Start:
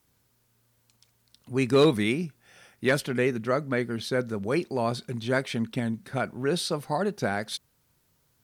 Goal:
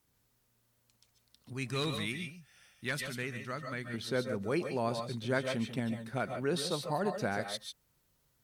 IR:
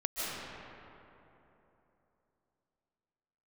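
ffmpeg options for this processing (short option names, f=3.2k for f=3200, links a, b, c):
-filter_complex "[0:a]asettb=1/sr,asplit=3[a][b][c];[a]atrim=end=1.534[d];[b]atrim=start=1.53:end=3.94,asetpts=PTS-STARTPTS,afade=t=in:d=0.004:c=qsin,afade=t=out:st=2.406:d=0.004:c=qsin,equalizer=f=450:t=o:w=2.4:g=-12.5[e];[c]atrim=start=3.936[f];[d][e]acrossfade=d=0.004:c1=hsin:c2=qsin[g];[g][f]acrossfade=d=0.004:c1=qsin:c2=hsin[h];[1:a]atrim=start_sample=2205,atrim=end_sample=6615,asetrate=43218,aresample=44100[i];[h][i]afir=irnorm=-1:irlink=0,volume=-5dB"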